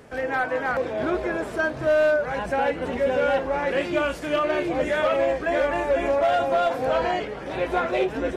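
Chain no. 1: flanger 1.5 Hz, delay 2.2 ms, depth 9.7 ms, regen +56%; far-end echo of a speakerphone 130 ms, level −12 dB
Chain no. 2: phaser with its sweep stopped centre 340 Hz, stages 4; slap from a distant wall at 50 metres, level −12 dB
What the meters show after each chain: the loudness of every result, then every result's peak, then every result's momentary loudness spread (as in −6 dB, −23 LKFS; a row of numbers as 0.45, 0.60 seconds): −28.0, −28.0 LKFS; −15.5, −14.0 dBFS; 5, 4 LU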